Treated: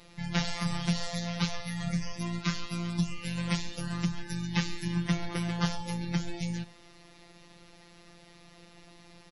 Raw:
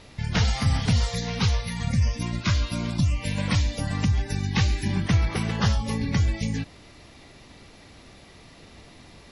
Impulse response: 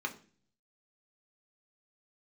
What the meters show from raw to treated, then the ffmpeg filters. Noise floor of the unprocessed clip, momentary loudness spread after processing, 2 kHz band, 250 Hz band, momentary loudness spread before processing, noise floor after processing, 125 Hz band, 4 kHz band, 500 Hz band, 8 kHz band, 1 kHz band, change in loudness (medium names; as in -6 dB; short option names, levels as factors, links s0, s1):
-50 dBFS, 5 LU, -5.5 dB, -3.5 dB, 5 LU, -56 dBFS, -9.5 dB, -5.5 dB, -6.0 dB, -5.5 dB, -5.5 dB, -7.5 dB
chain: -filter_complex "[0:a]afftfilt=real='hypot(re,im)*cos(PI*b)':imag='0':win_size=1024:overlap=0.75,asplit=2[s0][s1];[s1]aecho=0:1:94|188|282|376:0.0668|0.0394|0.0233|0.0137[s2];[s0][s2]amix=inputs=2:normalize=0,volume=0.794"